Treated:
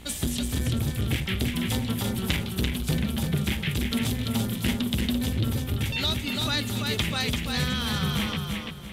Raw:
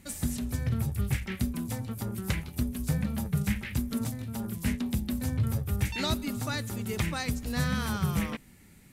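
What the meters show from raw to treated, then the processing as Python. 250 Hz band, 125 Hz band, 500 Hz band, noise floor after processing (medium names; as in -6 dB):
+3.5 dB, +2.5 dB, +4.5 dB, -34 dBFS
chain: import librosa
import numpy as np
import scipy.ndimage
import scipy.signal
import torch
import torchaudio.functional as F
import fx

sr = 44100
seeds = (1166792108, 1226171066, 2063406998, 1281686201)

y = fx.peak_eq(x, sr, hz=3300.0, db=13.5, octaves=0.68)
y = fx.rider(y, sr, range_db=10, speed_s=0.5)
y = fx.dmg_buzz(y, sr, base_hz=60.0, harmonics=35, level_db=-49.0, tilt_db=-6, odd_only=False)
y = fx.echo_feedback(y, sr, ms=339, feedback_pct=28, wet_db=-4.0)
y = fx.transformer_sat(y, sr, knee_hz=390.0)
y = y * librosa.db_to_amplitude(2.5)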